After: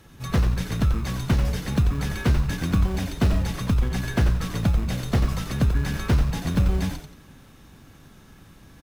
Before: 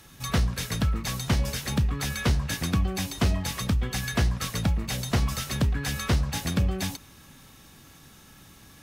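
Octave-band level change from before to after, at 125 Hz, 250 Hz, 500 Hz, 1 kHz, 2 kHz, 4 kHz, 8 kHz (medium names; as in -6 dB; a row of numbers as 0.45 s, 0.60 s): +4.0 dB, +3.5 dB, +2.5 dB, +0.5 dB, -0.5 dB, -4.0 dB, -5.5 dB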